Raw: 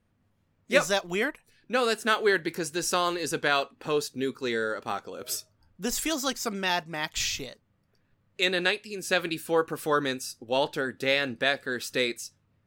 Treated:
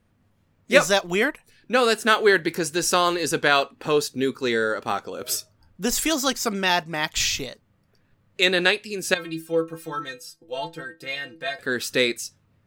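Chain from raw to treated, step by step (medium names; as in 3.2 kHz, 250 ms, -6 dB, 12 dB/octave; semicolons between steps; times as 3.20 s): 9.14–11.59 s: inharmonic resonator 160 Hz, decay 0.24 s, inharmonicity 0.008; trim +6 dB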